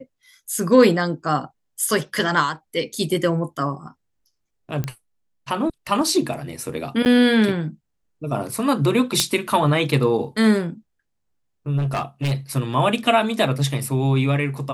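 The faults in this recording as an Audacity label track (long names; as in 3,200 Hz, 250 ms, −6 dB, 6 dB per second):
4.840000	4.840000	click −13 dBFS
7.050000	7.060000	drop-out 9 ms
9.200000	9.200000	click −1 dBFS
11.770000	12.330000	clipping −19 dBFS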